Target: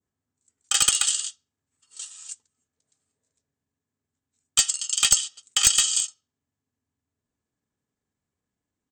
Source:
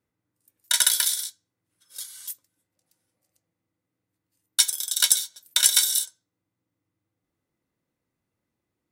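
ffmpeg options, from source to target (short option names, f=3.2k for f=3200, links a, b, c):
-af "adynamicequalizer=threshold=0.0282:dfrequency=3500:dqfactor=0.73:tfrequency=3500:tqfactor=0.73:attack=5:release=100:ratio=0.375:range=2:mode=boostabove:tftype=bell,aexciter=amount=2.5:drive=3.3:freq=7.8k,aresample=22050,aresample=44100,aeval=exprs='clip(val(0),-1,0.447)':c=same,asetrate=37084,aresample=44100,atempo=1.18921,volume=-3.5dB"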